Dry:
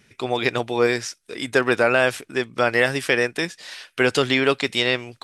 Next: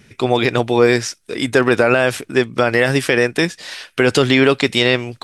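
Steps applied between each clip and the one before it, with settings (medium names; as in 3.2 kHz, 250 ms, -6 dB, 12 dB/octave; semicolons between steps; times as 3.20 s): bass shelf 410 Hz +6 dB; loudness maximiser +7 dB; trim -1 dB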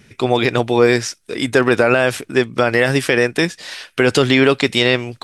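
no audible change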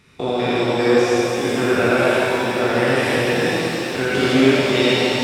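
spectrogram pixelated in time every 200 ms; pitch-shifted reverb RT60 3.4 s, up +7 st, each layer -8 dB, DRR -6.5 dB; trim -7 dB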